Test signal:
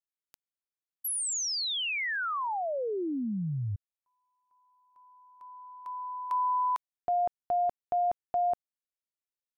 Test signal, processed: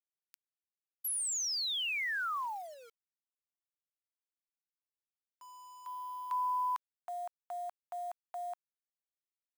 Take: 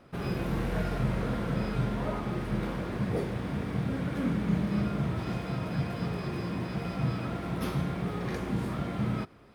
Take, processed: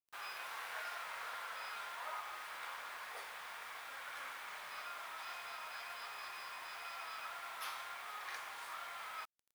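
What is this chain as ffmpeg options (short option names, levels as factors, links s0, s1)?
-af "highpass=f=920:w=0.5412,highpass=f=920:w=1.3066,acrusher=bits=8:mix=0:aa=0.000001,volume=0.708"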